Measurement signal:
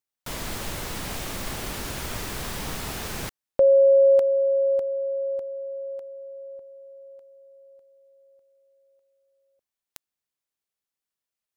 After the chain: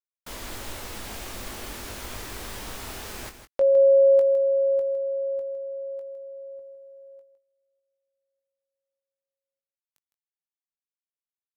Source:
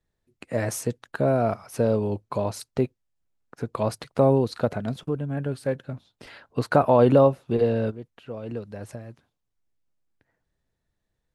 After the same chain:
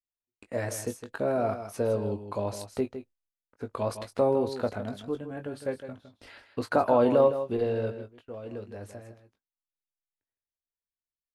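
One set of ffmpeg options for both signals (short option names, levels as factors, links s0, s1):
-filter_complex "[0:a]agate=range=0.0631:threshold=0.00501:ratio=16:release=358:detection=peak,equalizer=f=150:w=3.4:g=-13.5,asplit=2[s0][s1];[s1]adelay=20,volume=0.376[s2];[s0][s2]amix=inputs=2:normalize=0,aecho=1:1:159:0.299,volume=0.562"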